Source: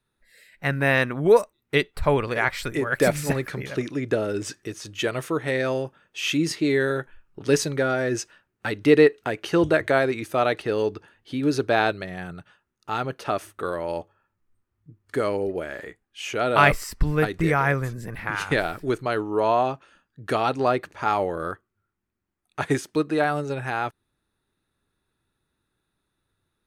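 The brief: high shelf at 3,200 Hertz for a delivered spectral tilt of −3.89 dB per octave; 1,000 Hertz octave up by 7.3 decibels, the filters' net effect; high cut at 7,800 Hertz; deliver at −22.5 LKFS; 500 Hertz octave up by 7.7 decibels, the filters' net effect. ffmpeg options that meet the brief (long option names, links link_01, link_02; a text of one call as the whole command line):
ffmpeg -i in.wav -af "lowpass=7800,equalizer=frequency=500:width_type=o:gain=7.5,equalizer=frequency=1000:width_type=o:gain=6.5,highshelf=frequency=3200:gain=6,volume=-4.5dB" out.wav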